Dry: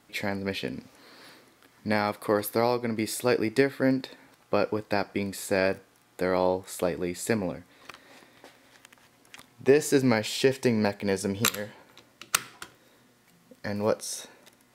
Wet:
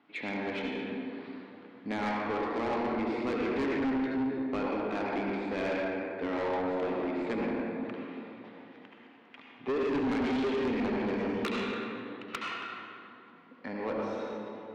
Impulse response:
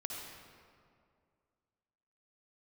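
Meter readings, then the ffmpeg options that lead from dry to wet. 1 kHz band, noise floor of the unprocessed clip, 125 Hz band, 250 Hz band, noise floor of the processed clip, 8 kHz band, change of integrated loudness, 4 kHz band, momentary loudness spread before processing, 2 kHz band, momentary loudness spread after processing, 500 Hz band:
−2.0 dB, −62 dBFS, −9.5 dB, −2.0 dB, −55 dBFS, below −20 dB, −5.5 dB, −9.0 dB, 14 LU, −4.5 dB, 15 LU, −6.0 dB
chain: -filter_complex "[0:a]highpass=260,equalizer=frequency=270:width_type=q:width=4:gain=7,equalizer=frequency=540:width_type=q:width=4:gain=-7,equalizer=frequency=1700:width_type=q:width=4:gain=-4,lowpass=frequency=3000:width=0.5412,lowpass=frequency=3000:width=1.3066[link_01];[1:a]atrim=start_sample=2205,asetrate=34398,aresample=44100[link_02];[link_01][link_02]afir=irnorm=-1:irlink=0,asoftclip=type=tanh:threshold=-27dB"

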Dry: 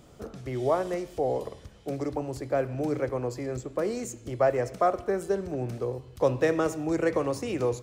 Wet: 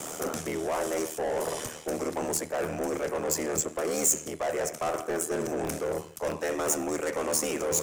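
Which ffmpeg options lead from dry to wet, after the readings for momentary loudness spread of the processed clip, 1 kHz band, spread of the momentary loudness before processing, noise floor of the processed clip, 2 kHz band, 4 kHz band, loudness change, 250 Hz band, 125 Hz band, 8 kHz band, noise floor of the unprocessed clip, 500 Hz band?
6 LU, −2.0 dB, 9 LU, −43 dBFS, +1.5 dB, +7.0 dB, −0.5 dB, −2.5 dB, −8.0 dB, +16.5 dB, −51 dBFS, −2.5 dB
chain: -filter_complex "[0:a]lowshelf=frequency=80:gain=-8.5,areverse,acompressor=threshold=-38dB:ratio=8,areverse,aeval=exprs='val(0)*sin(2*PI*39*n/s)':channel_layout=same,asplit=2[link_01][link_02];[link_02]highpass=frequency=720:poles=1,volume=22dB,asoftclip=type=tanh:threshold=-30dB[link_03];[link_01][link_03]amix=inputs=2:normalize=0,lowpass=frequency=2900:poles=1,volume=-6dB,acrossover=split=270|2100[link_04][link_05][link_06];[link_04]aeval=exprs='(mod(84.1*val(0)+1,2)-1)/84.1':channel_layout=same[link_07];[link_06]aexciter=amount=8:drive=4.2:freq=6000[link_08];[link_07][link_05][link_08]amix=inputs=3:normalize=0,volume=8.5dB"

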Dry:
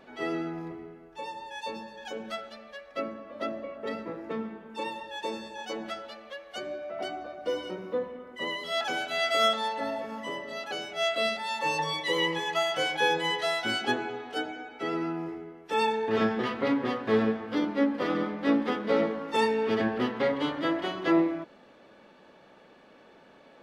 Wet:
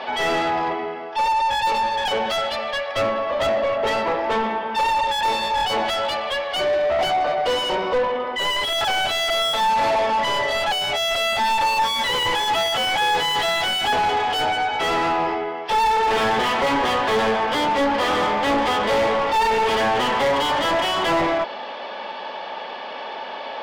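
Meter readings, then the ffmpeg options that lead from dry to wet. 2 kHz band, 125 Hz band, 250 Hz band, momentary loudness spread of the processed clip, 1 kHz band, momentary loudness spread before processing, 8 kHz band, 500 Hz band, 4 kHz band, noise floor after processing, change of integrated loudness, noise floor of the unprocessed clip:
+9.5 dB, +5.5 dB, 0.0 dB, 6 LU, +14.0 dB, 13 LU, +12.0 dB, +8.0 dB, +11.5 dB, −32 dBFS, +9.5 dB, −55 dBFS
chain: -filter_complex "[0:a]highpass=300,equalizer=frequency=320:width_type=q:width=4:gain=-10,equalizer=frequency=470:width_type=q:width=4:gain=-4,equalizer=frequency=880:width_type=q:width=4:gain=6,equalizer=frequency=1400:width_type=q:width=4:gain=-6,equalizer=frequency=3200:width_type=q:width=4:gain=8,equalizer=frequency=5000:width_type=q:width=4:gain=9,lowpass=frequency=5600:width=0.5412,lowpass=frequency=5600:width=1.3066,asplit=2[link_01][link_02];[link_02]highpass=frequency=720:poles=1,volume=35dB,asoftclip=type=tanh:threshold=-11dB[link_03];[link_01][link_03]amix=inputs=2:normalize=0,lowpass=frequency=1600:poles=1,volume=-6dB"

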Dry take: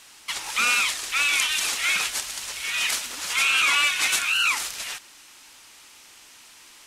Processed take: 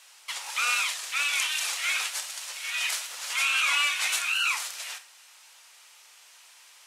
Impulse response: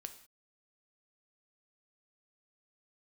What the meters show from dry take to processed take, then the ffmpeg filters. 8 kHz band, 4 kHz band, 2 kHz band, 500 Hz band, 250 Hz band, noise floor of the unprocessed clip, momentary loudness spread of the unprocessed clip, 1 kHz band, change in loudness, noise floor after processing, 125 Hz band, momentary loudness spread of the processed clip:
−4.5 dB, −4.5 dB, −4.5 dB, −7.0 dB, below −20 dB, −50 dBFS, 12 LU, −4.0 dB, −4.5 dB, −54 dBFS, can't be measured, 12 LU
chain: -filter_complex "[0:a]highpass=frequency=520:width=0.5412,highpass=frequency=520:width=1.3066[link_01];[1:a]atrim=start_sample=2205,atrim=end_sample=3969[link_02];[link_01][link_02]afir=irnorm=-1:irlink=0"

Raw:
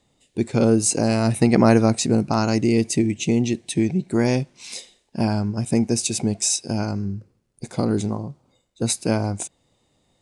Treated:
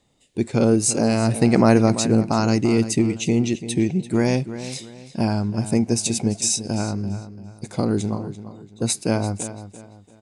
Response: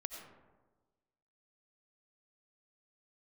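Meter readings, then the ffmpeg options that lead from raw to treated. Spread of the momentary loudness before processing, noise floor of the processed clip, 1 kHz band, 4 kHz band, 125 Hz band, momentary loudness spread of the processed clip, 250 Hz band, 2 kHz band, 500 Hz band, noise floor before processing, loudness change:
15 LU, −50 dBFS, 0.0 dB, 0.0 dB, +0.5 dB, 15 LU, +0.5 dB, 0.0 dB, +0.5 dB, −67 dBFS, +0.5 dB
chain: -filter_complex "[0:a]asplit=2[link_01][link_02];[link_02]adelay=340,lowpass=frequency=4900:poles=1,volume=-12.5dB,asplit=2[link_03][link_04];[link_04]adelay=340,lowpass=frequency=4900:poles=1,volume=0.34,asplit=2[link_05][link_06];[link_06]adelay=340,lowpass=frequency=4900:poles=1,volume=0.34[link_07];[link_01][link_03][link_05][link_07]amix=inputs=4:normalize=0"

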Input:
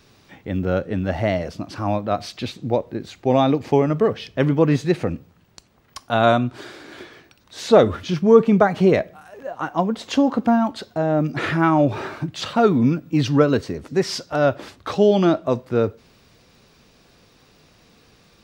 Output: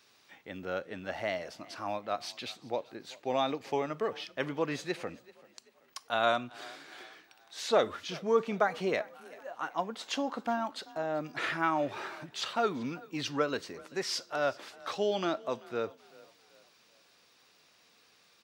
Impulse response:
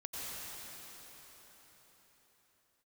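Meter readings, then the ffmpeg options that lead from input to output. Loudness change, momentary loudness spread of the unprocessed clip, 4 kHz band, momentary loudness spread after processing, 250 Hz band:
−13.5 dB, 14 LU, −6.5 dB, 15 LU, −19.0 dB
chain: -filter_complex "[0:a]highpass=frequency=1100:poles=1,asplit=2[link_01][link_02];[link_02]asplit=3[link_03][link_04][link_05];[link_03]adelay=386,afreqshift=32,volume=-22dB[link_06];[link_04]adelay=772,afreqshift=64,volume=-30dB[link_07];[link_05]adelay=1158,afreqshift=96,volume=-37.9dB[link_08];[link_06][link_07][link_08]amix=inputs=3:normalize=0[link_09];[link_01][link_09]amix=inputs=2:normalize=0,volume=-6dB"

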